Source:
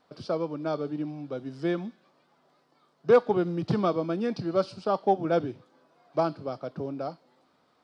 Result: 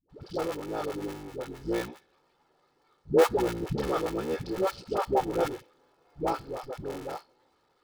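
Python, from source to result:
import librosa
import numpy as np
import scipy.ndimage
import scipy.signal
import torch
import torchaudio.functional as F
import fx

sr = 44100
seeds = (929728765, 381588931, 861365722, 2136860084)

y = fx.cycle_switch(x, sr, every=3, mode='muted')
y = y + 0.49 * np.pad(y, (int(2.3 * sr / 1000.0), 0))[:len(y)]
y = fx.dispersion(y, sr, late='highs', ms=97.0, hz=410.0)
y = y * 10.0 ** (-1.5 / 20.0)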